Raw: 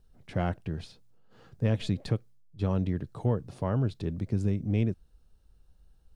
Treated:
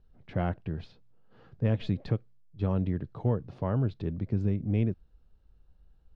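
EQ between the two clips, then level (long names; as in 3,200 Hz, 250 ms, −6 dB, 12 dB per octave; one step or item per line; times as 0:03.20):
high-frequency loss of the air 220 metres
0.0 dB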